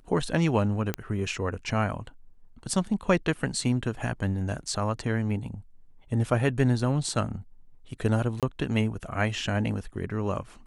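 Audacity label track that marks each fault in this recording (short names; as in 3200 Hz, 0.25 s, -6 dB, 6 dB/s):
0.940000	0.940000	pop -13 dBFS
8.400000	8.430000	gap 27 ms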